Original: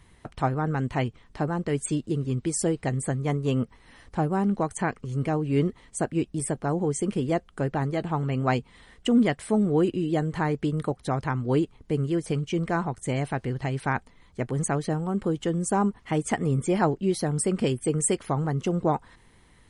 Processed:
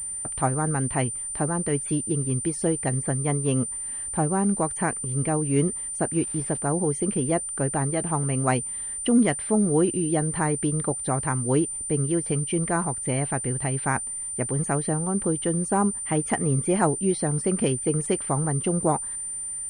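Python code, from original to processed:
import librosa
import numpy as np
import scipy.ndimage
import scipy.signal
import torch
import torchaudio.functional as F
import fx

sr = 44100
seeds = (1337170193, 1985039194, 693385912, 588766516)

y = fx.dmg_crackle(x, sr, seeds[0], per_s=520.0, level_db=-38.0, at=(6.12, 6.58), fade=0.02)
y = fx.pwm(y, sr, carrier_hz=9100.0)
y = F.gain(torch.from_numpy(y), 1.0).numpy()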